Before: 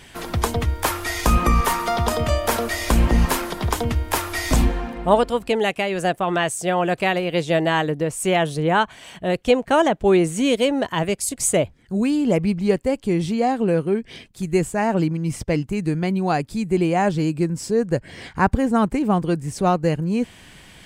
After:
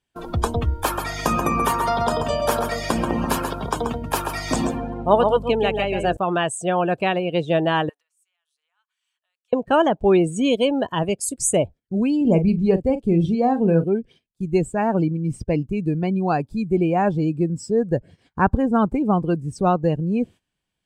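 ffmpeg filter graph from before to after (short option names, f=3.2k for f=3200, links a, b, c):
-filter_complex "[0:a]asettb=1/sr,asplit=3[a][b][c];[a]atrim=end=0.844[d];[b]atrim=start=0.84:end=6.17,asetpts=PTS-STARTPTS,afade=t=in:d=0.004:c=qsin,afade=t=out:st=5.326:d=0.004:c=qsin,highpass=180,aeval=exprs='val(0)+0.0251*(sin(2*PI*50*n/s)+sin(2*PI*2*50*n/s)/2+sin(2*PI*3*50*n/s)/3+sin(2*PI*4*50*n/s)/4+sin(2*PI*5*50*n/s)/5)':c=same,aecho=1:1:133:0.562,atrim=end_sample=235053[e];[c]atrim=start=6.166[f];[d][e]acrossfade=d=0.004:c1=hsin:c2=qsin[g];[g][f]acrossfade=d=0.004:c1=qsin:c2=hsin,asettb=1/sr,asplit=3[h][i][j];[h]atrim=end=7.894[k];[i]atrim=start=7.89:end=9.53,asetpts=PTS-STARTPTS,afade=t=in:d=0.004:c=qsin,afade=t=out:st=1.636:d=0.004:c=qsin,highpass=f=1.2k:w=0.5412,highpass=f=1.2k:w=1.3066,bandreject=f=1.6k:w=18,acompressor=threshold=-36dB:ratio=8:attack=3.2:release=140:knee=1:detection=peak[l];[j]atrim=start=9.526[m];[k][l]acrossfade=d=0.004:c1=hsin:c2=qsin[n];[n][m]acrossfade=d=0.004:c1=qsin:c2=hsin,asettb=1/sr,asplit=3[o][p][q];[o]atrim=end=12.214[r];[p]atrim=start=12.21:end=13.84,asetpts=PTS-STARTPTS,afade=t=in:d=0.004:c=qsin,afade=t=out:st=1.626:d=0.004:c=qsin,bass=f=250:g=4,treble=f=4k:g=0,asplit=2[s][t];[t]adelay=42,volume=-9.5dB[u];[s][u]amix=inputs=2:normalize=0,atrim=end_sample=71883[v];[q]atrim=start=13.836[w];[r][v]acrossfade=d=0.004:c1=hsin:c2=qsin[x];[x][w]acrossfade=d=0.004:c1=qsin:c2=hsin,equalizer=f=2k:w=5.6:g=-7.5,agate=range=-17dB:threshold=-37dB:ratio=16:detection=peak,afftdn=nr=18:nf=-31"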